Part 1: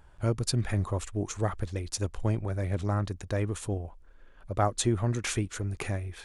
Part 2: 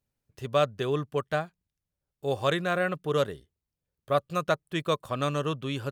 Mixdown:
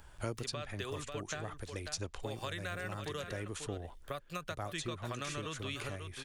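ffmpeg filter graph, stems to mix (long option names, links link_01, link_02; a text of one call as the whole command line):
ffmpeg -i stem1.wav -i stem2.wav -filter_complex "[0:a]volume=-0.5dB[link_01];[1:a]acompressor=threshold=-31dB:ratio=6,equalizer=frequency=2000:width=1.1:gain=5.5,volume=-6dB,asplit=3[link_02][link_03][link_04];[link_03]volume=-10dB[link_05];[link_04]apad=whole_len=275419[link_06];[link_01][link_06]sidechaincompress=threshold=-45dB:ratio=8:attack=34:release=975[link_07];[link_05]aecho=0:1:541:1[link_08];[link_07][link_02][link_08]amix=inputs=3:normalize=0,highshelf=frequency=2200:gain=10,acrossover=split=250|5800[link_09][link_10][link_11];[link_09]acompressor=threshold=-43dB:ratio=4[link_12];[link_10]acompressor=threshold=-38dB:ratio=4[link_13];[link_11]acompressor=threshold=-55dB:ratio=4[link_14];[link_12][link_13][link_14]amix=inputs=3:normalize=0" out.wav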